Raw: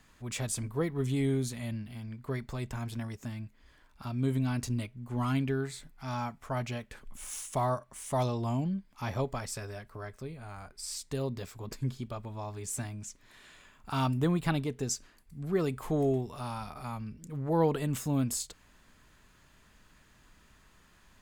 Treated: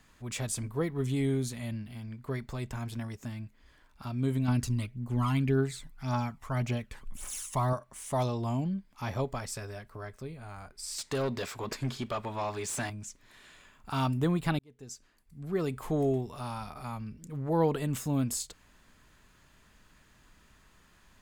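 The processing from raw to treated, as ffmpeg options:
-filter_complex "[0:a]asettb=1/sr,asplit=3[s0][s1][s2];[s0]atrim=end=4.484[s3];[s1]atrim=start=4.48:end=7.73,asetpts=PTS-STARTPTS,afade=t=in:d=0.004:c=qsin,afade=t=out:st=3.246:d=0.004:c=qsin,aphaser=in_gain=1:out_gain=1:delay=1.1:decay=0.51:speed=1.8:type=triangular[s4];[s2]atrim=start=7.726[s5];[s3][s4]acrossfade=d=0.004:c1=hsin:c2=qsin[s6];[s6][s5]acrossfade=d=0.004:c1=qsin:c2=hsin,asettb=1/sr,asplit=3[s7][s8][s9];[s7]atrim=end=10.984[s10];[s8]atrim=start=10.98:end=12.9,asetpts=PTS-STARTPTS,afade=t=in:d=0.004:c=qsin,afade=t=out:st=1.916:d=0.004:c=qsin,asplit=2[s11][s12];[s12]highpass=f=720:p=1,volume=10,asoftclip=type=tanh:threshold=0.075[s13];[s11][s13]amix=inputs=2:normalize=0,lowpass=f=3800:p=1,volume=0.501[s14];[s9]atrim=start=12.896[s15];[s10][s14]acrossfade=d=0.004:c1=hsin:c2=qsin[s16];[s16][s15]acrossfade=d=0.004:c1=qsin:c2=hsin,asplit=2[s17][s18];[s17]atrim=end=14.59,asetpts=PTS-STARTPTS,afade=t=out:st=14.586:d=0.004:c=hsin[s19];[s18]atrim=start=14.59,asetpts=PTS-STARTPTS,afade=t=in:d=1.21[s20];[s19][s20]concat=n=2:v=0:a=1"

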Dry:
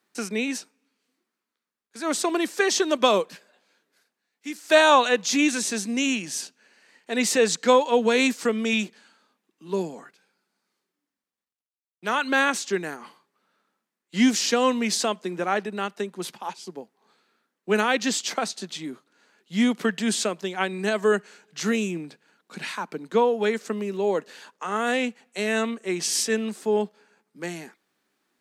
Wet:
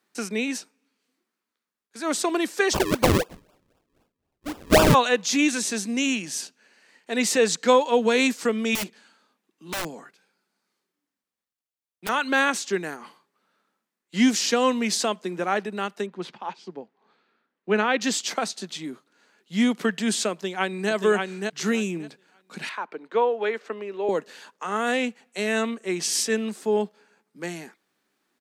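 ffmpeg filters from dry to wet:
-filter_complex "[0:a]asplit=3[s0][s1][s2];[s0]afade=t=out:st=2.73:d=0.02[s3];[s1]acrusher=samples=42:mix=1:aa=0.000001:lfo=1:lforange=42:lforate=3.9,afade=t=in:st=2.73:d=0.02,afade=t=out:st=4.93:d=0.02[s4];[s2]afade=t=in:st=4.93:d=0.02[s5];[s3][s4][s5]amix=inputs=3:normalize=0,asettb=1/sr,asplit=3[s6][s7][s8];[s6]atrim=end=8.754[s9];[s7]atrim=start=8.75:end=12.09,asetpts=PTS-STARTPTS,afade=t=in:d=0.004:c=qsin,afade=t=out:st=3.336:d=0.004:c=qsin,aeval=exprs='(mod(15*val(0)+1,2)-1)/15':c=same[s10];[s8]atrim=start=12.086[s11];[s9][s10]acrossfade=d=0.004:c1=hsin:c2=qsin[s12];[s12][s11]acrossfade=d=0.004:c1=qsin:c2=hsin,asettb=1/sr,asplit=3[s13][s14][s15];[s13]atrim=end=16.064[s16];[s14]atrim=start=16.06:end=18.01,asetpts=PTS-STARTPTS,afade=t=in:d=0.004:c=qsin,afade=t=out:st=1.946:d=0.004:c=qsin,lowpass=3400[s17];[s15]atrim=start=18.006[s18];[s16][s17]acrossfade=d=0.004:c1=hsin:c2=qsin[s19];[s19][s18]acrossfade=d=0.004:c1=qsin:c2=hsin,asplit=2[s20][s21];[s21]afade=t=in:st=20.32:d=0.01,afade=t=out:st=20.91:d=0.01,aecho=0:1:580|1160|1740:0.668344|0.100252|0.0150377[s22];[s20][s22]amix=inputs=2:normalize=0,asettb=1/sr,asplit=3[s23][s24][s25];[s23]atrim=end=22.694[s26];[s24]atrim=start=22.69:end=24.09,asetpts=PTS-STARTPTS,afade=t=in:d=0.004:c=qsin,afade=t=out:st=1.396:d=0.004:c=qsin,acrossover=split=320 3600:gain=0.0891 1 0.112[s27][s28][s29];[s27][s28][s29]amix=inputs=3:normalize=0[s30];[s25]atrim=start=24.086[s31];[s26][s30]acrossfade=d=0.004:c1=hsin:c2=qsin[s32];[s32][s31]acrossfade=d=0.004:c1=qsin:c2=hsin"

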